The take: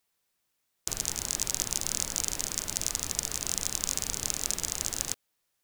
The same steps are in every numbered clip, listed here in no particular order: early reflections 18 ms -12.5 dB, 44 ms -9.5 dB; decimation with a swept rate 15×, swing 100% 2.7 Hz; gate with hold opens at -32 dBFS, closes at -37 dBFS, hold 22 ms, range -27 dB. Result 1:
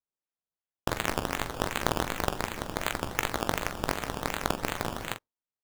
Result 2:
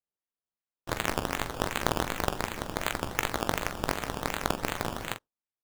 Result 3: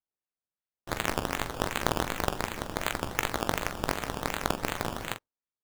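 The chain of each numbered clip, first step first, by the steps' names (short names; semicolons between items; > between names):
gate with hold > decimation with a swept rate > early reflections; decimation with a swept rate > early reflections > gate with hold; decimation with a swept rate > gate with hold > early reflections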